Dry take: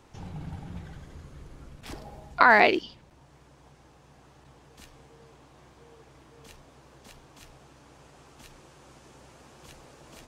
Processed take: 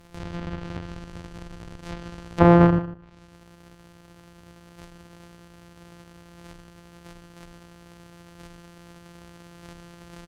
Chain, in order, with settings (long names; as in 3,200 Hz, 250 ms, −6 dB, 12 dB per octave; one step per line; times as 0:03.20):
samples sorted by size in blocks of 256 samples
treble cut that deepens with the level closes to 1,000 Hz, closed at −29 dBFS
slap from a distant wall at 26 metres, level −15 dB
level +5 dB